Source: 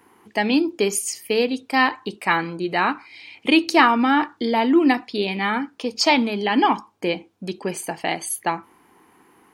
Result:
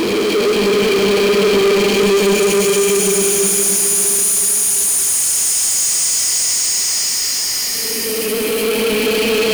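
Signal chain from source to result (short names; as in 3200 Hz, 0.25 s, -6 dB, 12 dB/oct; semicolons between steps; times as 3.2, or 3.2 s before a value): Paulstretch 17×, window 0.25 s, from 0.74; power-law curve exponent 0.35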